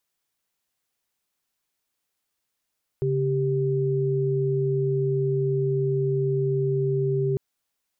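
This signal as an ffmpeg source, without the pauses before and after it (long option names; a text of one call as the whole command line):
ffmpeg -f lavfi -i "aevalsrc='0.0668*(sin(2*PI*138.59*t)+sin(2*PI*392*t))':duration=4.35:sample_rate=44100" out.wav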